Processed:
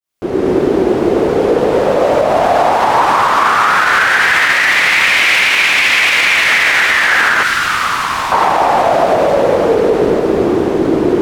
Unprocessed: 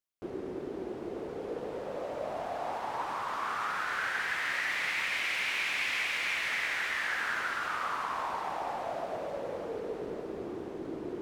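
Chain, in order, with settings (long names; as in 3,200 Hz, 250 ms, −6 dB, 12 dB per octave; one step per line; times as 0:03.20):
fade in at the beginning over 0.51 s
0:07.43–0:08.32: parametric band 590 Hz −14 dB 2.6 octaves
boost into a limiter +27.5 dB
level −1 dB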